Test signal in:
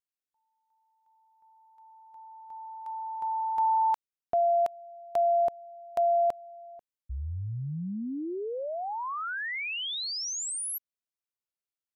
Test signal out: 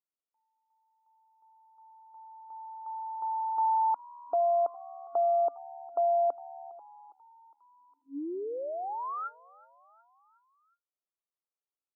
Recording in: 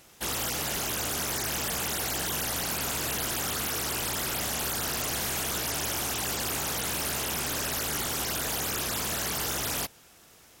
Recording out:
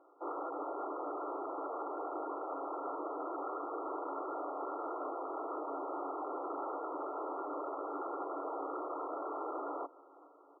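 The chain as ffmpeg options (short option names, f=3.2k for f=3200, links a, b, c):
-filter_complex "[0:a]asplit=5[a][b][c][d][e];[b]adelay=408,afreqshift=74,volume=-23dB[f];[c]adelay=816,afreqshift=148,volume=-27.6dB[g];[d]adelay=1224,afreqshift=222,volume=-32.2dB[h];[e]adelay=1632,afreqshift=296,volume=-36.7dB[i];[a][f][g][h][i]amix=inputs=5:normalize=0,afftfilt=real='re*between(b*sr/4096,270,1400)':imag='im*between(b*sr/4096,270,1400)':win_size=4096:overlap=0.75,volume=-1.5dB"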